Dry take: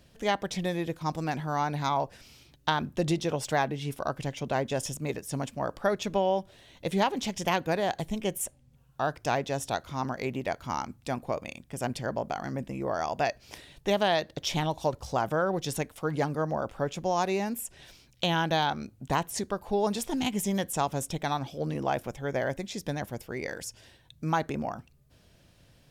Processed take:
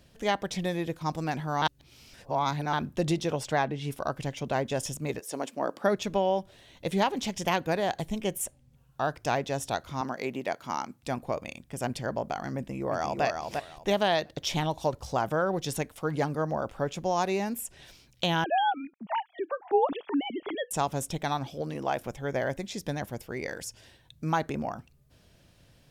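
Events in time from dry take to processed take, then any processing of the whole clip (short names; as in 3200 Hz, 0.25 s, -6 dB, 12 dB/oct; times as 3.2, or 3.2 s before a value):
1.62–2.73 reverse
3.43–3.84 high shelf 8500 Hz -11.5 dB
5.19–5.95 resonant high-pass 490 Hz -> 200 Hz, resonance Q 1.6
10.01–11.03 HPF 190 Hz
12.56–13.24 echo throw 0.35 s, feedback 20%, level -4.5 dB
18.44–20.71 sine-wave speech
21.61–22.01 low shelf 230 Hz -7 dB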